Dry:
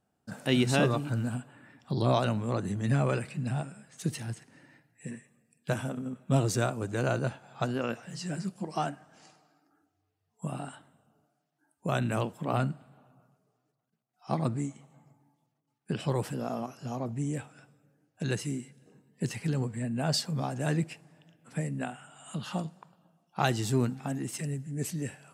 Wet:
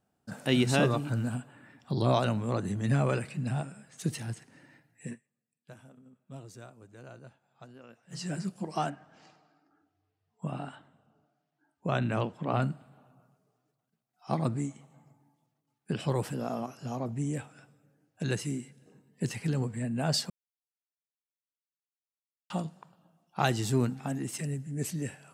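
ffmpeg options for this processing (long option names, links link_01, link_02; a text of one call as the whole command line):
ffmpeg -i in.wav -filter_complex "[0:a]asettb=1/sr,asplit=3[link_01][link_02][link_03];[link_01]atrim=end=8.904[link_04];[link_02]atrim=start=8.9:end=12.62,asetpts=PTS-STARTPTS,afade=type=in:duration=0.004:curve=qsin,afade=type=out:start_time=3.716:duration=0.004:curve=qsin,lowpass=4500[link_05];[link_03]atrim=start=12.616[link_06];[link_04][link_05]acrossfade=duration=0.004:curve1=hsin:curve2=qsin[link_07];[link_07][link_06]acrossfade=duration=0.004:curve1=qsin:curve2=hsin,asplit=5[link_08][link_09][link_10][link_11][link_12];[link_08]atrim=end=5.34,asetpts=PTS-STARTPTS,afade=type=out:start_time=5.13:duration=0.21:curve=exp:silence=0.1[link_13];[link_09]atrim=start=5.34:end=7.92,asetpts=PTS-STARTPTS,volume=-20dB[link_14];[link_10]atrim=start=7.92:end=20.3,asetpts=PTS-STARTPTS,afade=type=in:duration=0.21:curve=exp:silence=0.1,afade=type=out:start_time=12.376:duration=0.004:curve=hsin[link_15];[link_11]atrim=start=20.3:end=22.5,asetpts=PTS-STARTPTS,volume=0[link_16];[link_12]atrim=start=22.5,asetpts=PTS-STARTPTS,afade=type=in:duration=0.004:curve=hsin[link_17];[link_13][link_14][link_15][link_16][link_17]concat=n=5:v=0:a=1" out.wav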